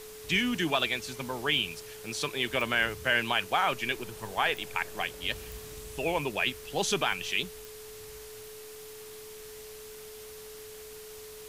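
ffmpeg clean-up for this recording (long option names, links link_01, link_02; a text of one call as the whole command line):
ffmpeg -i in.wav -af "adeclick=threshold=4,bandreject=frequency=430:width=30,afwtdn=0.004" out.wav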